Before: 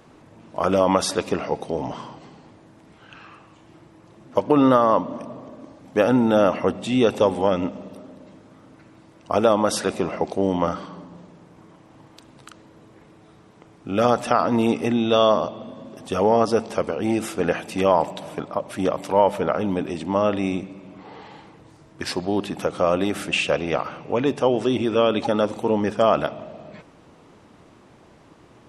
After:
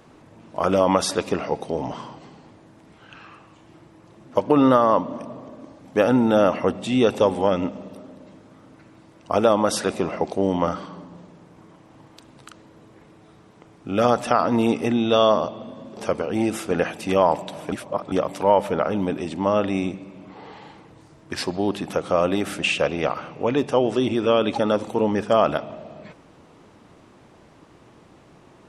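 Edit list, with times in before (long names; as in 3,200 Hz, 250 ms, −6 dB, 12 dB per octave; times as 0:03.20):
0:15.97–0:16.66: remove
0:18.41–0:18.81: reverse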